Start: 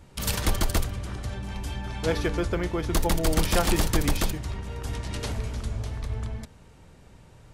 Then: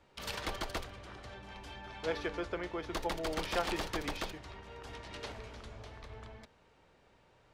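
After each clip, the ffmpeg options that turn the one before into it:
ffmpeg -i in.wav -filter_complex "[0:a]acrossover=split=330 5100:gain=0.224 1 0.178[link_01][link_02][link_03];[link_01][link_02][link_03]amix=inputs=3:normalize=0,volume=-7dB" out.wav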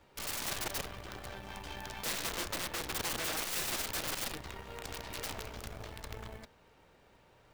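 ffmpeg -i in.wav -af "aeval=exprs='0.112*(cos(1*acos(clip(val(0)/0.112,-1,1)))-cos(1*PI/2))+0.01*(cos(3*acos(clip(val(0)/0.112,-1,1)))-cos(3*PI/2))+0.0251*(cos(8*acos(clip(val(0)/0.112,-1,1)))-cos(8*PI/2))':channel_layout=same,acrusher=bits=4:mode=log:mix=0:aa=0.000001,aeval=exprs='(mod(50.1*val(0)+1,2)-1)/50.1':channel_layout=same,volume=5dB" out.wav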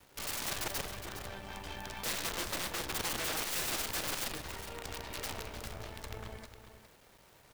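ffmpeg -i in.wav -filter_complex "[0:a]acrusher=bits=9:mix=0:aa=0.000001,asplit=2[link_01][link_02];[link_02]aecho=0:1:412:0.299[link_03];[link_01][link_03]amix=inputs=2:normalize=0" out.wav

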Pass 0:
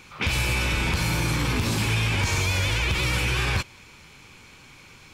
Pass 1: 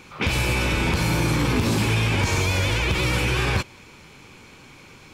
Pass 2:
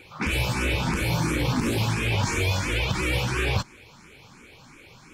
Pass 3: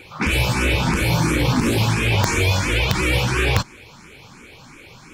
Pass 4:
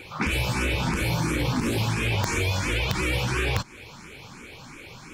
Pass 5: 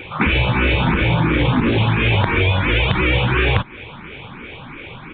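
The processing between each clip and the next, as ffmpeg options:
ffmpeg -i in.wav -af "equalizer=frequency=360:width=0.43:gain=6.5" out.wav
ffmpeg -i in.wav -filter_complex "[0:a]asplit=2[link_01][link_02];[link_02]afreqshift=2.9[link_03];[link_01][link_03]amix=inputs=2:normalize=1" out.wav
ffmpeg -i in.wav -af "aeval=exprs='(mod(4.47*val(0)+1,2)-1)/4.47':channel_layout=same,volume=6dB" out.wav
ffmpeg -i in.wav -af "acompressor=threshold=-25dB:ratio=2.5" out.wav
ffmpeg -i in.wav -af "aresample=8000,aresample=44100,volume=9dB" out.wav

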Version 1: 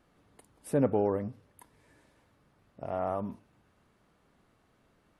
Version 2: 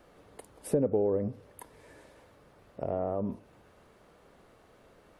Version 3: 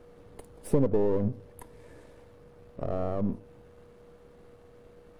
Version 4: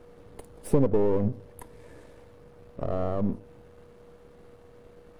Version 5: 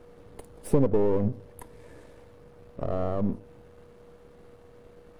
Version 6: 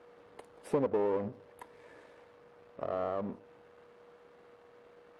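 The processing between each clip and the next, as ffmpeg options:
ffmpeg -i in.wav -filter_complex "[0:a]acompressor=threshold=-30dB:ratio=6,equalizer=frequency=125:width_type=o:width=1:gain=-3,equalizer=frequency=250:width_type=o:width=1:gain=-3,equalizer=frequency=500:width_type=o:width=1:gain=7,acrossover=split=460[link_01][link_02];[link_02]acompressor=threshold=-50dB:ratio=3[link_03];[link_01][link_03]amix=inputs=2:normalize=0,volume=7.5dB" out.wav
ffmpeg -i in.wav -af "aeval=exprs='if(lt(val(0),0),0.447*val(0),val(0))':channel_layout=same,aeval=exprs='val(0)+0.00126*sin(2*PI*480*n/s)':channel_layout=same,lowshelf=frequency=340:gain=10.5" out.wav
ffmpeg -i in.wav -af "aeval=exprs='if(lt(val(0),0),0.708*val(0),val(0))':channel_layout=same,volume=2.5dB" out.wav
ffmpeg -i in.wav -af anull out.wav
ffmpeg -i in.wav -af "bandpass=frequency=1500:width_type=q:width=0.53:csg=0" out.wav

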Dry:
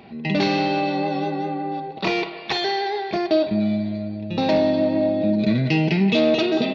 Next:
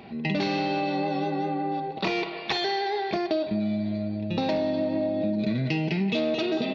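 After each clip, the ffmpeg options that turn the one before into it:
ffmpeg -i in.wav -af "acompressor=threshold=-24dB:ratio=4" out.wav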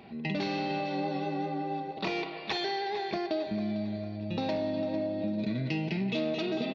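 ffmpeg -i in.wav -af "aecho=1:1:450|900|1350|1800:0.237|0.0949|0.0379|0.0152,volume=-5.5dB" out.wav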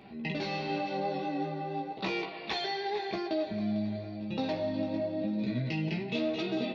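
ffmpeg -i in.wav -af "flanger=delay=15:depth=3.7:speed=0.93,volume=2dB" out.wav

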